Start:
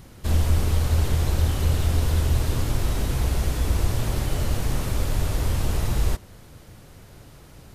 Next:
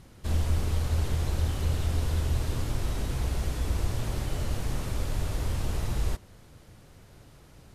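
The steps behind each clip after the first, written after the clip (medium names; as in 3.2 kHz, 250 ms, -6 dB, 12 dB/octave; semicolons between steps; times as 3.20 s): Bessel low-pass 12 kHz; trim -6 dB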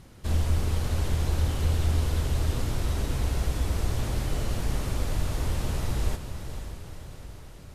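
echo that smears into a reverb 518 ms, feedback 56%, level -9 dB; trim +1.5 dB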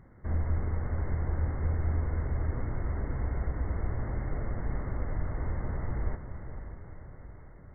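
brick-wall FIR low-pass 2.2 kHz; trim -4.5 dB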